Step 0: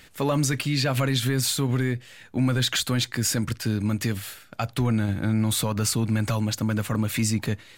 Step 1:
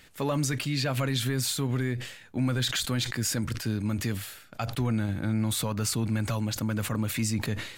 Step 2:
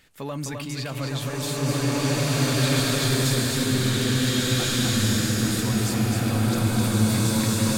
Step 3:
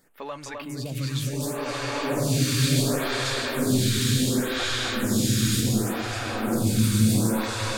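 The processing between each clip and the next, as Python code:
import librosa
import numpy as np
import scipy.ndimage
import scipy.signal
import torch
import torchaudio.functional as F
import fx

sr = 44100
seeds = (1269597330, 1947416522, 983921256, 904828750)

y1 = fx.sustainer(x, sr, db_per_s=80.0)
y1 = y1 * 10.0 ** (-4.5 / 20.0)
y2 = y1 + 10.0 ** (-4.0 / 20.0) * np.pad(y1, (int(258 * sr / 1000.0), 0))[:len(y1)]
y2 = fx.rev_bloom(y2, sr, seeds[0], attack_ms=1960, drr_db=-9.5)
y2 = y2 * 10.0 ** (-4.0 / 20.0)
y3 = y2 + 10.0 ** (-7.0 / 20.0) * np.pad(y2, (int(805 * sr / 1000.0), 0))[:len(y2)]
y3 = fx.stagger_phaser(y3, sr, hz=0.69)
y3 = y3 * 10.0 ** (1.5 / 20.0)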